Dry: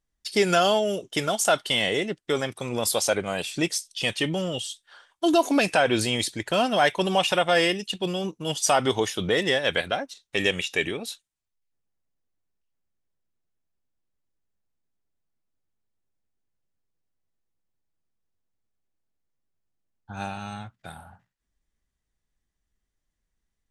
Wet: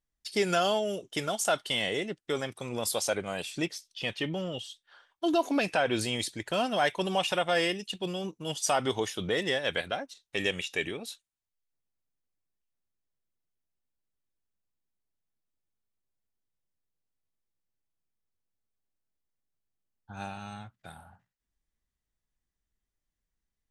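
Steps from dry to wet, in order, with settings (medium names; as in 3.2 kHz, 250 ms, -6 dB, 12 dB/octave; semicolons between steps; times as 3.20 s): 3.64–5.90 s: peaking EQ 8.8 kHz -14 dB -> -6 dB 1.1 oct; trim -6 dB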